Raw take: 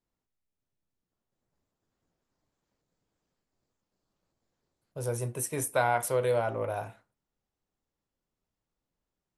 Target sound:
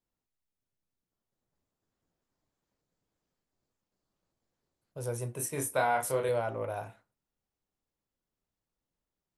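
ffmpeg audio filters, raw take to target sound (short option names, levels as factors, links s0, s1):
-filter_complex "[0:a]asettb=1/sr,asplit=3[s0][s1][s2];[s0]atrim=end=5.364[s3];[s1]atrim=start=5.36:end=6.29,asetpts=PTS-STARTPTS,afade=t=in:d=0.004:c=qsin,afade=t=out:st=0.926:d=0.004:c=qsin,asplit=2[s4][s5];[s5]adelay=29,volume=0.631[s6];[s4][s6]amix=inputs=2:normalize=0,atrim=end_sample=41013[s7];[s2]atrim=start=6.286[s8];[s3][s7]acrossfade=d=0.004:c1=hsin:c2=qsin[s9];[s9][s8]acrossfade=d=0.004:c1=qsin:c2=hsin,volume=0.708"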